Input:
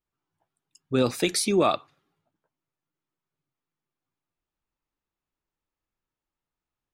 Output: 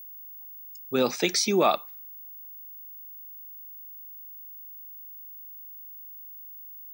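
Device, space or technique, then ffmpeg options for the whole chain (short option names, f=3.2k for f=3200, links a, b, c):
old television with a line whistle: -af "highpass=f=170:w=0.5412,highpass=f=170:w=1.3066,equalizer=f=290:t=q:w=4:g=-6,equalizer=f=830:t=q:w=4:g=4,equalizer=f=2.1k:t=q:w=4:g=3,equalizer=f=5.8k:t=q:w=4:g=9,lowpass=f=7.1k:w=0.5412,lowpass=f=7.1k:w=1.3066,aeval=exprs='val(0)+0.00891*sin(2*PI*15625*n/s)':c=same"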